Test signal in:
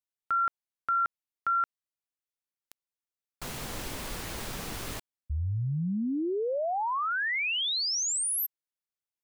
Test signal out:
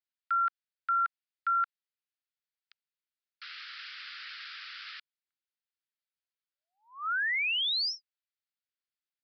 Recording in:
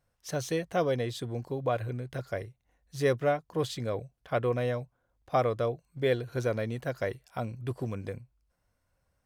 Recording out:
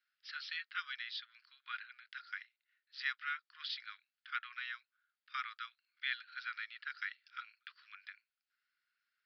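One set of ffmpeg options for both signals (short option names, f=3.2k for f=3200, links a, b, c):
-af "asuperpass=centerf=3200:order=20:qfactor=0.52,aresample=11025,aresample=44100"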